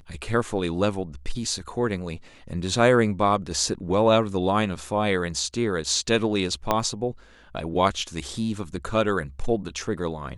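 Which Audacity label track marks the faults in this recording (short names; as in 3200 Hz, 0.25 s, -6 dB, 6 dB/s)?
6.710000	6.710000	pop -7 dBFS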